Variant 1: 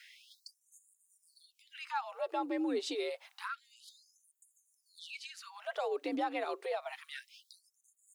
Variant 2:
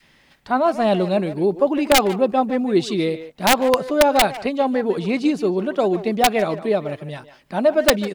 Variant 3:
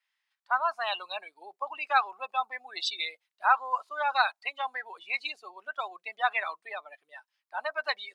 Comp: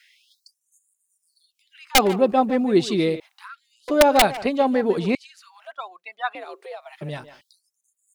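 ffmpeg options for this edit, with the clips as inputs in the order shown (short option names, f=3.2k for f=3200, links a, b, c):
-filter_complex "[1:a]asplit=3[a][b][c];[0:a]asplit=5[d][e][f][g][h];[d]atrim=end=1.952[i];[a]atrim=start=1.948:end=3.202[j];[e]atrim=start=3.198:end=3.882[k];[b]atrim=start=3.878:end=5.152[l];[f]atrim=start=5.148:end=5.722[m];[2:a]atrim=start=5.718:end=6.352[n];[g]atrim=start=6.348:end=7.012[o];[c]atrim=start=7.008:end=7.412[p];[h]atrim=start=7.408[q];[i][j]acrossfade=d=0.004:c1=hsin:c2=hsin[r];[r][k]acrossfade=d=0.004:c1=hsin:c2=hsin[s];[s][l]acrossfade=d=0.004:c1=hsin:c2=hsin[t];[t][m]acrossfade=d=0.004:c1=hsin:c2=hsin[u];[u][n]acrossfade=d=0.004:c1=hsin:c2=hsin[v];[v][o]acrossfade=d=0.004:c1=hsin:c2=hsin[w];[w][p]acrossfade=d=0.004:c1=hsin:c2=hsin[x];[x][q]acrossfade=d=0.004:c1=hsin:c2=hsin"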